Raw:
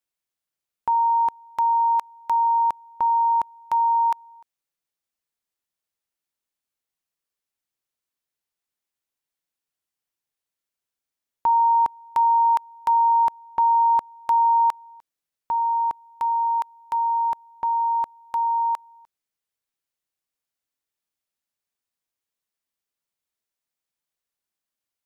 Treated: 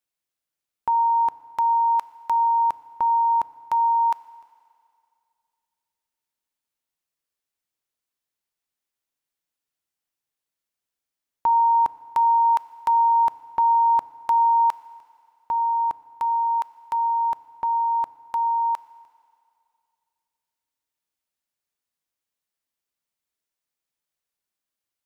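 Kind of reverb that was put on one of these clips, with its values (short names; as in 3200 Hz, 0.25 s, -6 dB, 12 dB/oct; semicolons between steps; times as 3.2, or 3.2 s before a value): FDN reverb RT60 2.4 s, low-frequency decay 0.8×, high-frequency decay 1×, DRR 15.5 dB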